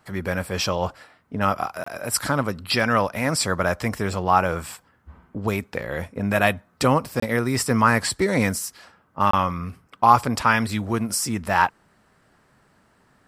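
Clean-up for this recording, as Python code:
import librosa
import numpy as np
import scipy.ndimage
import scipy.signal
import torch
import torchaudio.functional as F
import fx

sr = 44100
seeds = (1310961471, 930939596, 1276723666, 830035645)

y = fx.fix_interpolate(x, sr, at_s=(1.84, 7.2, 9.31), length_ms=24.0)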